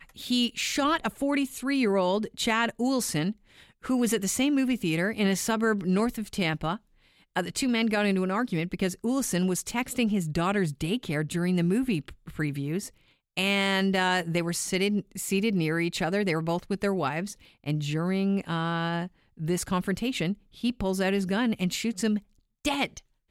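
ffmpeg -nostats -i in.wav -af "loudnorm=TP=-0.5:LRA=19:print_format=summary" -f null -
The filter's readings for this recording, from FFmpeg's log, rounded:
Input Integrated:    -27.7 LUFS
Input True Peak:     -11.4 dBTP
Input LRA:             2.6 LU
Input Threshold:     -38.0 LUFS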